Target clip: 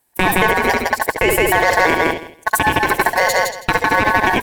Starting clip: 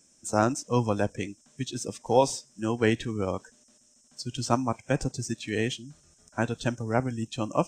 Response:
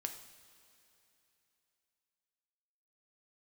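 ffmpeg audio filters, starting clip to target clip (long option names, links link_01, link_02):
-filter_complex "[0:a]aeval=exprs='val(0)+0.5*0.0178*sgn(val(0))':channel_layout=same,agate=range=-41dB:threshold=-29dB:ratio=16:detection=peak,asplit=2[link_01][link_02];[link_02]aecho=0:1:282|564|846:0.398|0.0637|0.0102[link_03];[link_01][link_03]amix=inputs=2:normalize=0,acompressor=threshold=-27dB:ratio=10,highpass=87,asplit=2[link_04][link_05];[link_05]adelay=120,highpass=300,lowpass=3400,asoftclip=type=hard:threshold=-26.5dB,volume=-6dB[link_06];[link_04][link_06]amix=inputs=2:normalize=0,asetrate=76440,aresample=44100,aeval=exprs='val(0)*sin(2*PI*1300*n/s)':channel_layout=same,asplit=2[link_07][link_08];[link_08]adynamicsmooth=sensitivity=3.5:basefreq=1100,volume=1dB[link_09];[link_07][link_09]amix=inputs=2:normalize=0,alimiter=level_in=20.5dB:limit=-1dB:release=50:level=0:latency=1,volume=-1dB" -ar 44100 -c:a ac3 -b:a 128k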